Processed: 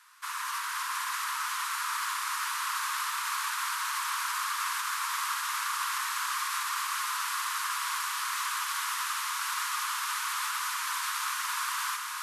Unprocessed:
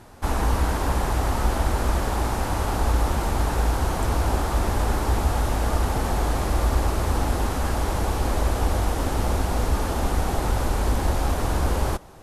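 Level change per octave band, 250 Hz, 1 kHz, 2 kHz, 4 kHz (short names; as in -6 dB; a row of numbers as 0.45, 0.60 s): under -40 dB, -3.5 dB, +2.0 dB, +2.5 dB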